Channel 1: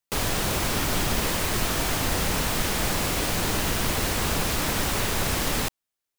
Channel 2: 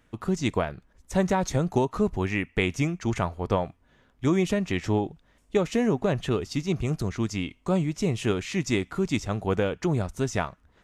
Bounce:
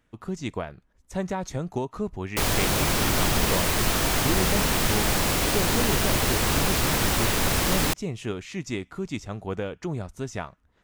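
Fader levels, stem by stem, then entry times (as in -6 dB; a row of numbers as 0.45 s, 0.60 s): +2.0 dB, -5.5 dB; 2.25 s, 0.00 s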